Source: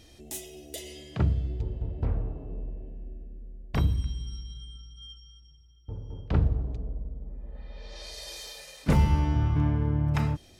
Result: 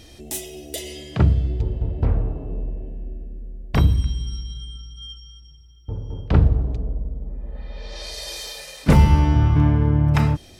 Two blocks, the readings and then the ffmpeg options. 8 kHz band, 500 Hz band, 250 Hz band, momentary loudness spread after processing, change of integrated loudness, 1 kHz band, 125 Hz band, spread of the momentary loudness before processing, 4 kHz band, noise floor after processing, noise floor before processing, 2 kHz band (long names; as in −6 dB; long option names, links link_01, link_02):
+8.0 dB, +8.5 dB, +8.5 dB, 20 LU, +8.5 dB, +8.5 dB, +8.5 dB, 20 LU, +8.5 dB, −46 dBFS, −55 dBFS, +8.5 dB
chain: -af "bandreject=frequency=6700:width=30,volume=8.5dB"